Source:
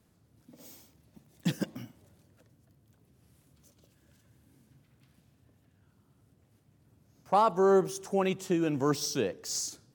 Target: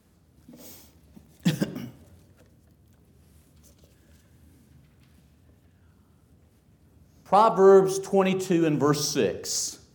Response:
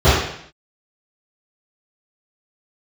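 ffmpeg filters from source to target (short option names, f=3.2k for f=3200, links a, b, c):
-filter_complex "[0:a]asplit=2[a][b];[1:a]atrim=start_sample=2205[c];[b][c]afir=irnorm=-1:irlink=0,volume=-39.5dB[d];[a][d]amix=inputs=2:normalize=0,volume=5.5dB"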